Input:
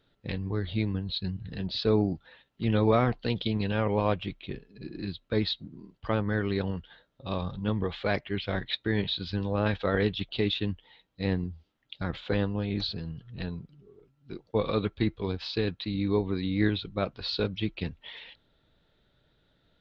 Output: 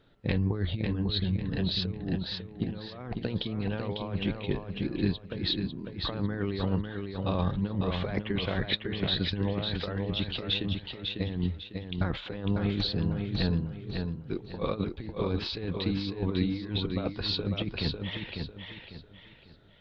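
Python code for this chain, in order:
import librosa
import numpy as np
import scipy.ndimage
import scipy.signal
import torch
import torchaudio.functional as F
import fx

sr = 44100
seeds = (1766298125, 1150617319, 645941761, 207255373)

p1 = fx.high_shelf(x, sr, hz=3600.0, db=-9.5)
p2 = fx.over_compress(p1, sr, threshold_db=-32.0, ratio=-0.5)
p3 = p2 + fx.echo_feedback(p2, sr, ms=549, feedback_pct=33, wet_db=-5, dry=0)
y = p3 * librosa.db_to_amplitude(2.5)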